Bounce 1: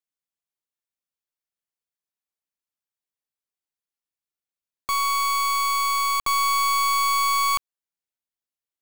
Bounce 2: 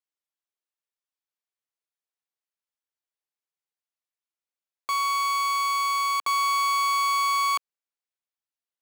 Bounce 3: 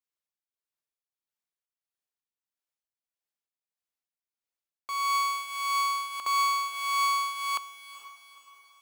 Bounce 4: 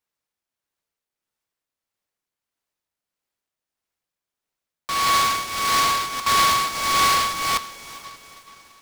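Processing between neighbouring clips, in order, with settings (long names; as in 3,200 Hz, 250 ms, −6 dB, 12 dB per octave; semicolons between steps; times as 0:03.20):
high-pass filter 400 Hz 12 dB per octave; high-shelf EQ 8,300 Hz −8.5 dB; level −1.5 dB
shaped tremolo triangle 1.6 Hz, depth 75%; feedback delay with all-pass diffusion 463 ms, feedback 47%, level −13.5 dB
short delay modulated by noise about 2,700 Hz, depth 0.071 ms; level +8 dB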